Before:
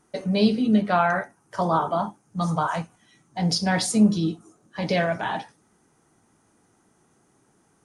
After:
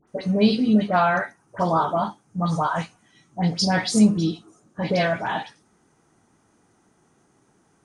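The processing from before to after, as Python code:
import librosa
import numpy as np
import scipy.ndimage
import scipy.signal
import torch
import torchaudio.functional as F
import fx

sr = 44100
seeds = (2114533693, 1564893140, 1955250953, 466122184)

y = scipy.signal.sosfilt(scipy.signal.butter(2, 8300.0, 'lowpass', fs=sr, output='sos'), x)
y = fx.dispersion(y, sr, late='highs', ms=77.0, hz=1700.0)
y = y * librosa.db_to_amplitude(1.5)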